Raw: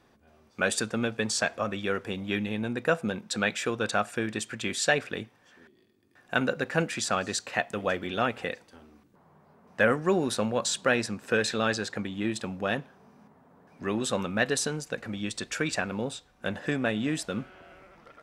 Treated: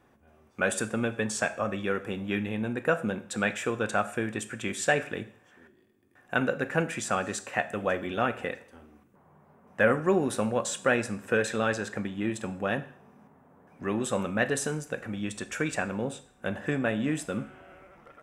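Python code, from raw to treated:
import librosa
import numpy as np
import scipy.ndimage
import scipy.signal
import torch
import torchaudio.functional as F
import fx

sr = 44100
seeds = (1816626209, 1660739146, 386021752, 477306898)

y = fx.peak_eq(x, sr, hz=4500.0, db=-12.0, octaves=0.76)
y = fx.rev_double_slope(y, sr, seeds[0], early_s=0.54, late_s=1.9, knee_db=-28, drr_db=11.0)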